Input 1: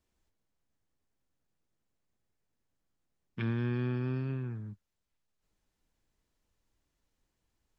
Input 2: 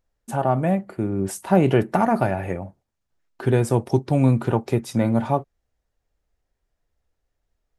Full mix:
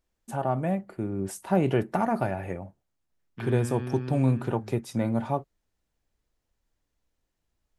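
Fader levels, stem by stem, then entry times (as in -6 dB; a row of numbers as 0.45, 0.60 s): -2.0, -6.5 dB; 0.00, 0.00 s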